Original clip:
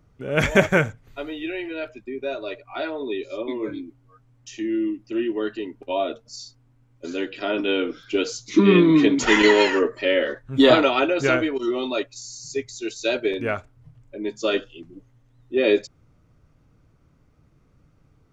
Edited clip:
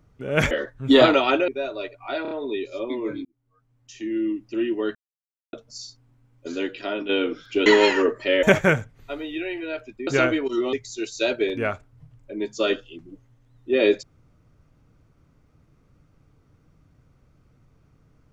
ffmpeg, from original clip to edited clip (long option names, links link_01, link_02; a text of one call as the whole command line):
ffmpeg -i in.wav -filter_complex "[0:a]asplit=14[link_01][link_02][link_03][link_04][link_05][link_06][link_07][link_08][link_09][link_10][link_11][link_12][link_13][link_14];[link_01]atrim=end=0.512[link_15];[link_02]atrim=start=10.198:end=11.172[link_16];[link_03]atrim=start=2.148:end=2.922[link_17];[link_04]atrim=start=2.888:end=2.922[link_18];[link_05]atrim=start=2.888:end=2.922[link_19];[link_06]atrim=start=2.888:end=3.83,asetpts=PTS-STARTPTS,afade=type=out:start_time=0.938:duration=0.004:curve=hsin[link_20];[link_07]atrim=start=3.83:end=5.53,asetpts=PTS-STARTPTS,afade=type=in:duration=1.1,afade=type=out:start_time=1.696:duration=0.004:curve=hsin[link_21];[link_08]atrim=start=5.53:end=6.11,asetpts=PTS-STARTPTS,volume=0[link_22];[link_09]atrim=start=6.11:end=7.67,asetpts=PTS-STARTPTS,afade=type=in:duration=0.004:curve=hsin,afade=type=out:start_time=1.05:duration=0.51:curve=qsin:silence=0.375837[link_23];[link_10]atrim=start=7.67:end=8.242,asetpts=PTS-STARTPTS,afade=type=in:duration=0.004:curve=hsin:silence=0.375837[link_24];[link_11]atrim=start=9.428:end=10.202[link_25];[link_12]atrim=start=0.508:end=2.152[link_26];[link_13]atrim=start=11.168:end=11.832[link_27];[link_14]atrim=start=12.568[link_28];[link_15][link_16]acrossfade=duration=0.004:curve1=hsin:curve2=hsin[link_29];[link_29][link_17]acrossfade=duration=0.004:curve1=hsin:curve2=hsin[link_30];[link_30][link_18]acrossfade=duration=0.004:curve1=hsin:curve2=hsin[link_31];[link_31][link_19]acrossfade=duration=0.004:curve1=hsin:curve2=hsin[link_32];[link_20][link_21][link_22][link_23][link_24]concat=n=5:v=0:a=1[link_33];[link_32][link_33]acrossfade=duration=0.004:curve1=hsin:curve2=hsin[link_34];[link_34][link_25]acrossfade=duration=0.004:curve1=hsin:curve2=hsin[link_35];[link_35][link_26]acrossfade=duration=0.004:curve1=hsin:curve2=hsin[link_36];[link_36][link_27]acrossfade=duration=0.004:curve1=hsin:curve2=hsin[link_37];[link_37][link_28]acrossfade=duration=0.004:curve1=hsin:curve2=hsin" out.wav